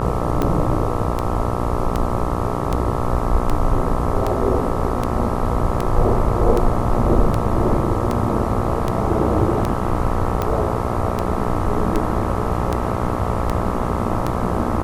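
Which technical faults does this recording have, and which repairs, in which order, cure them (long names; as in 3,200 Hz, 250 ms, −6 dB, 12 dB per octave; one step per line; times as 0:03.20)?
mains buzz 60 Hz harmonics 22 −24 dBFS
scratch tick 78 rpm −8 dBFS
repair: click removal
hum removal 60 Hz, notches 22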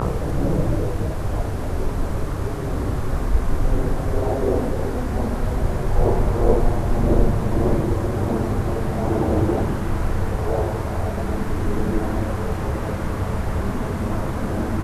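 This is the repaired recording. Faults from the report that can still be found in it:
none of them is left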